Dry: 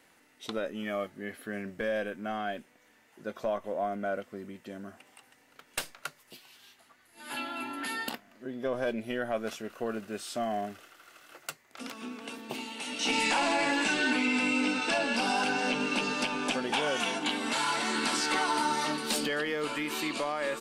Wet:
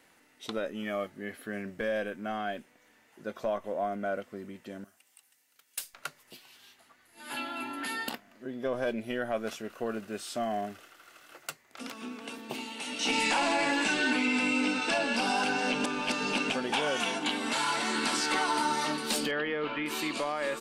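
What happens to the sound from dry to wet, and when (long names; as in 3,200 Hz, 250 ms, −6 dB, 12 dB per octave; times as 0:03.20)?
0:04.84–0:05.94: first-order pre-emphasis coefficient 0.9
0:15.84–0:16.50: reverse
0:19.31–0:19.86: low-pass filter 3,300 Hz 24 dB per octave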